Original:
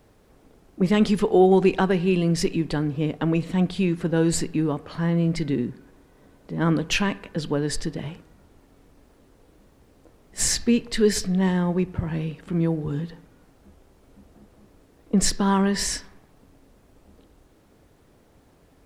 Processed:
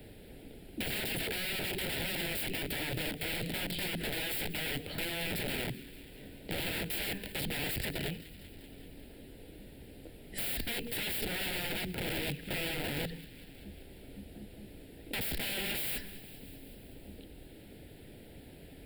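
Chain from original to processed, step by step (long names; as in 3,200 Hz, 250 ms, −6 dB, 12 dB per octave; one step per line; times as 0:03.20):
brickwall limiter −15 dBFS, peak gain reduction 8.5 dB
wrap-around overflow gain 28 dB
phaser with its sweep stopped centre 2,700 Hz, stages 4
on a send: delay with a high-pass on its return 193 ms, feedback 57%, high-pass 1,900 Hz, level −17 dB
on the sum: multiband upward and downward compressor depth 40%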